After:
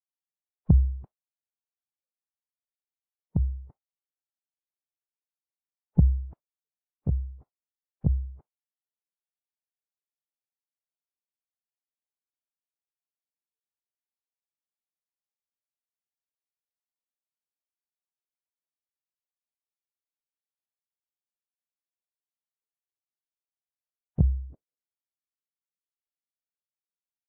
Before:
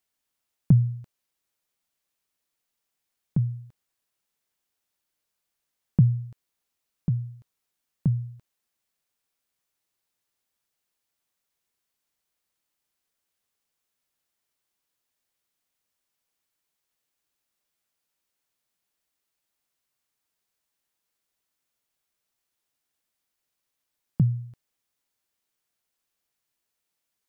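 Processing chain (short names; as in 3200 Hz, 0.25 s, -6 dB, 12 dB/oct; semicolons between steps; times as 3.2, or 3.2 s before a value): spectral noise reduction 27 dB; low-pass sweep 820 Hz -> 220 Hz, 24.28–25.26; formant-preserving pitch shift -10.5 st; gain +2.5 dB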